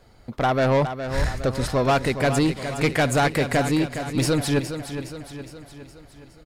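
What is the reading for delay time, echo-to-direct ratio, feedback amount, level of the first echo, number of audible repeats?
0.414 s, -8.0 dB, 53%, -9.5 dB, 5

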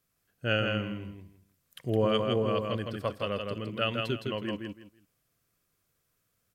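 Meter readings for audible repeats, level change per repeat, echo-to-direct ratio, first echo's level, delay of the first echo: 3, -13.0 dB, -4.0 dB, -4.0 dB, 0.163 s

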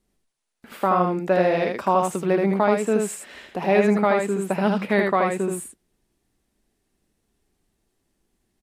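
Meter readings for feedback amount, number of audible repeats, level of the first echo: no steady repeat, 1, -3.5 dB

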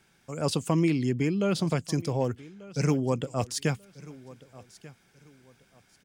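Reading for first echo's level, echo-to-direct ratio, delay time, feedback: -20.0 dB, -19.5 dB, 1.189 s, 28%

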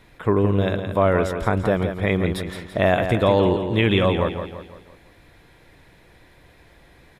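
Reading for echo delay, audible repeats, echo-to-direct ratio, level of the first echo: 0.169 s, 4, -7.0 dB, -8.0 dB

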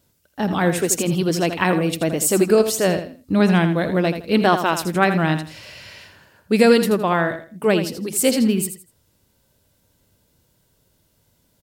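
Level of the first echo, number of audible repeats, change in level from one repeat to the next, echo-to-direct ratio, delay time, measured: -9.5 dB, 3, -12.0 dB, -9.0 dB, 82 ms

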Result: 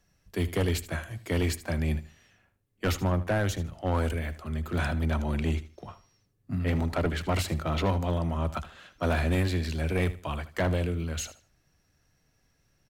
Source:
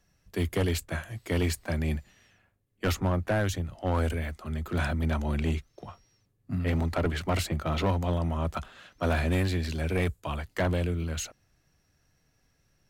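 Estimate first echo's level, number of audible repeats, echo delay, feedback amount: -15.5 dB, 2, 77 ms, 25%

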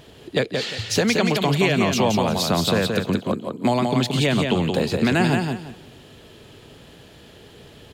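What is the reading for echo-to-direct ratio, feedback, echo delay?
-4.0 dB, 25%, 0.175 s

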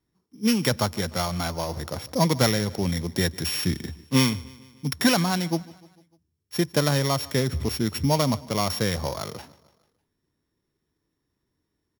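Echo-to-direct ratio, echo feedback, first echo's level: -20.5 dB, 56%, -22.0 dB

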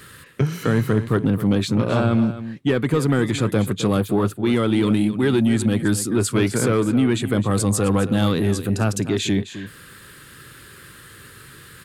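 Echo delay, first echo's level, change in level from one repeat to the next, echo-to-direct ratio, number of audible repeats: 0.262 s, -13.0 dB, no steady repeat, -13.0 dB, 1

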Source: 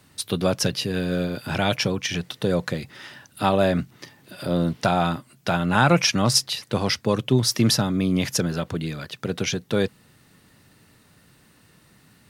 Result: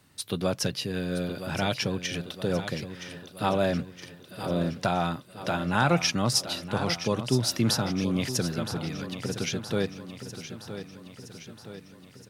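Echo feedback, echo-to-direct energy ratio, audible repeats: 57%, -9.5 dB, 5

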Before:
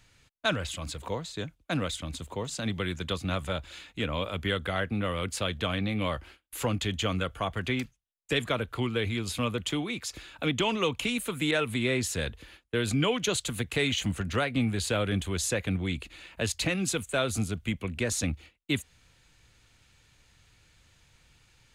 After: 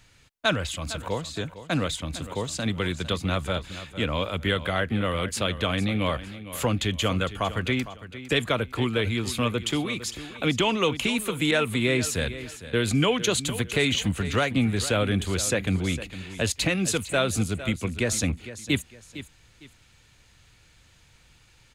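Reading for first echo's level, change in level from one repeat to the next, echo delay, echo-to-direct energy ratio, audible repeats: -14.0 dB, -10.5 dB, 0.456 s, -13.5 dB, 2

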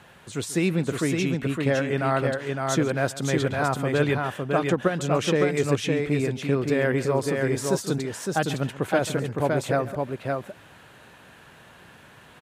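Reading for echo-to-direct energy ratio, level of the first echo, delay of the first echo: -3.5 dB, -17.5 dB, 0.137 s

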